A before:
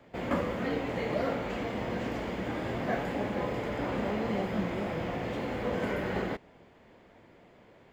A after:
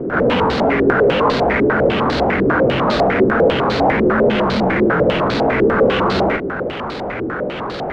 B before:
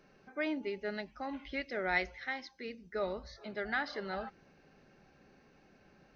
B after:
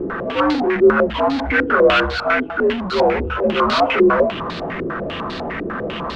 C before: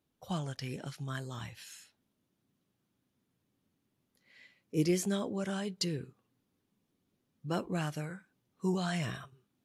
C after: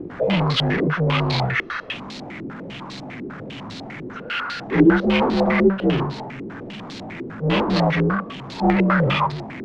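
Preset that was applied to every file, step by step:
inharmonic rescaling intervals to 84%; power-law curve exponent 0.35; stepped low-pass 10 Hz 380–4200 Hz; normalise peaks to -3 dBFS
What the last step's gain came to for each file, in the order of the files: +8.5, +10.0, +5.5 dB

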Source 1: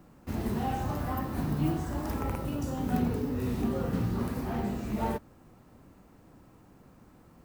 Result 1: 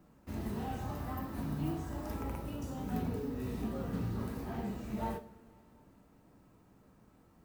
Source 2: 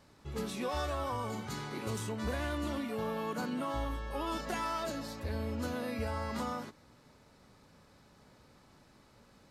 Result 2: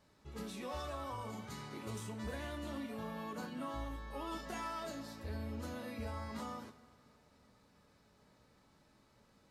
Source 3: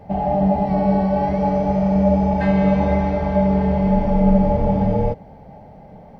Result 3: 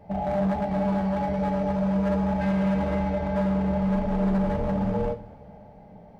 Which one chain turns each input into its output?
hard clip -15.5 dBFS; two-slope reverb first 0.32 s, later 3 s, from -21 dB, DRR 5 dB; gain -8 dB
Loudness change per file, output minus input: -7.0, -7.0, -7.5 LU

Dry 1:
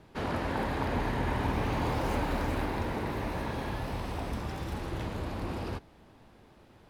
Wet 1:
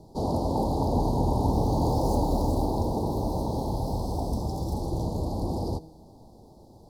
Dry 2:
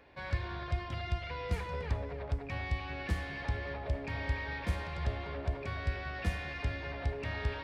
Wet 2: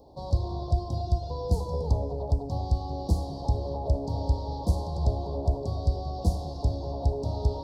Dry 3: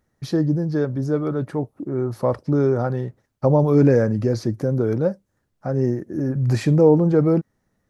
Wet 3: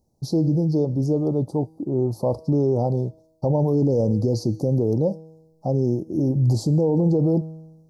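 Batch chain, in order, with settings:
elliptic band-stop 860–4500 Hz, stop band 50 dB; resonator 160 Hz, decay 1.1 s, mix 50%; limiter -20 dBFS; normalise peaks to -12 dBFS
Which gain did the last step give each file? +12.5, +15.0, +8.0 dB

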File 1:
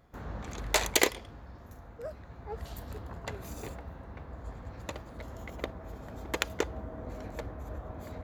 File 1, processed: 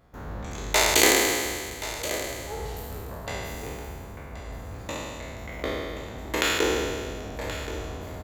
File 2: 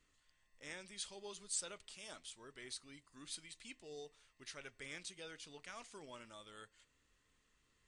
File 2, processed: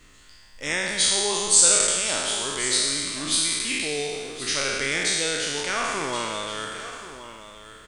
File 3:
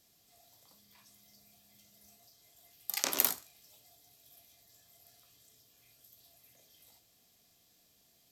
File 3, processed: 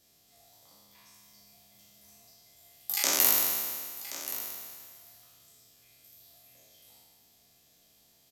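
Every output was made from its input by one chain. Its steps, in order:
spectral trails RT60 1.96 s; echo 1.077 s -13 dB; normalise peaks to -3 dBFS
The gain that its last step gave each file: +1.0, +20.5, 0.0 dB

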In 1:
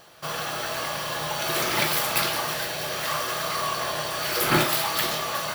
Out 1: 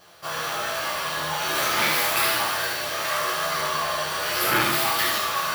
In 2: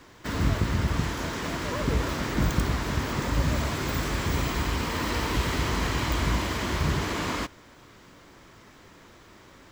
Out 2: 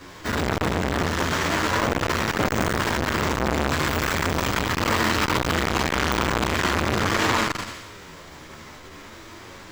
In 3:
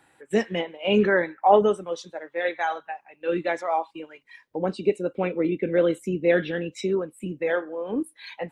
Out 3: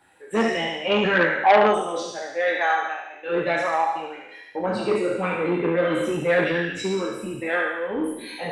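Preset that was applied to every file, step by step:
spectral trails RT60 0.97 s; notches 50/100/150/200/250/300 Hz; dynamic EQ 1400 Hz, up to +4 dB, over -35 dBFS, Q 0.98; chorus voices 2, 0.41 Hz, delay 11 ms, depth 2.3 ms; thinning echo 73 ms, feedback 59%, high-pass 1200 Hz, level -5 dB; core saturation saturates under 1300 Hz; match loudness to -23 LUFS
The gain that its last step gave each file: 0.0, +10.0, +2.5 dB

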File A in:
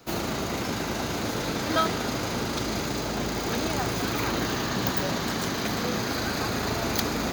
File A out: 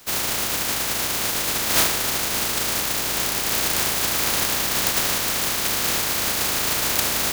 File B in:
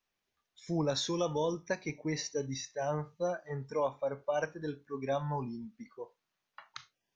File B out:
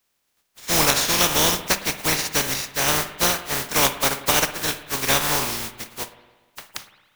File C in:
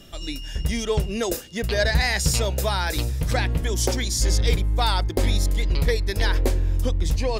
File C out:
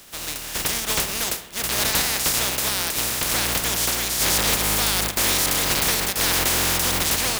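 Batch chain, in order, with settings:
spectral contrast lowered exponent 0.18; overloaded stage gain 15.5 dB; spring tank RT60 1.3 s, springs 52/57 ms, chirp 50 ms, DRR 11.5 dB; match loudness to -20 LUFS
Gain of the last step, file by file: +5.5, +13.0, 0.0 dB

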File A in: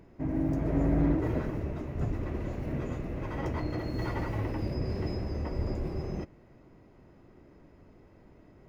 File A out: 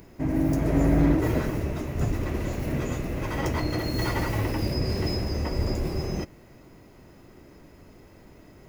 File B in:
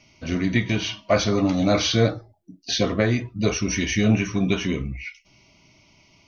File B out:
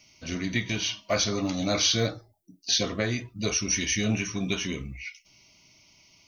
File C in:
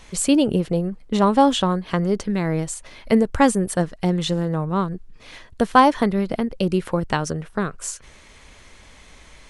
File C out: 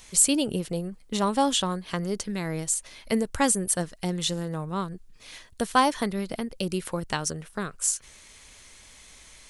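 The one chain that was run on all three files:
pre-emphasis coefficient 0.8; match loudness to -27 LUFS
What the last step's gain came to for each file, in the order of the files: +19.0, +6.0, +5.5 dB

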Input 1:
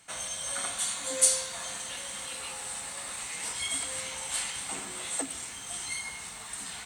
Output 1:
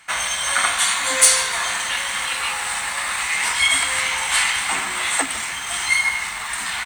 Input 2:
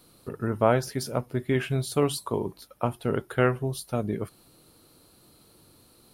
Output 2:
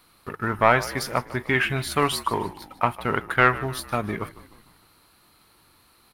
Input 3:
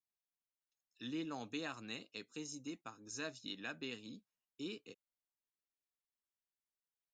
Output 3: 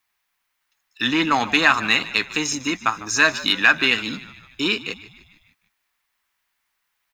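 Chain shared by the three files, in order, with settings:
sample leveller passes 1; graphic EQ 125/250/500/1000/2000/8000 Hz -6/-4/-7/+6/+8/-4 dB; frequency-shifting echo 0.151 s, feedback 53%, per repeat -58 Hz, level -17.5 dB; normalise peaks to -2 dBFS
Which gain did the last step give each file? +9.0, +1.5, +22.0 dB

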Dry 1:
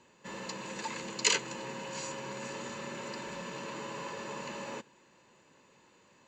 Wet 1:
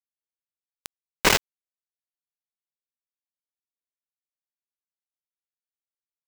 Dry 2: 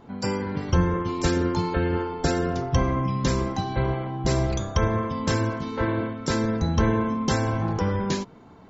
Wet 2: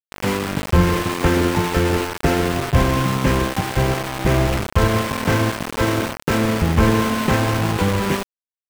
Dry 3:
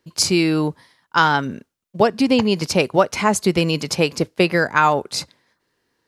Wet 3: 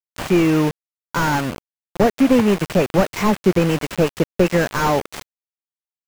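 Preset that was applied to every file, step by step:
delta modulation 16 kbps, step -27 dBFS; sample gate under -25 dBFS; normalise peaks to -3 dBFS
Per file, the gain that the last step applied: +15.0, +6.0, +2.5 dB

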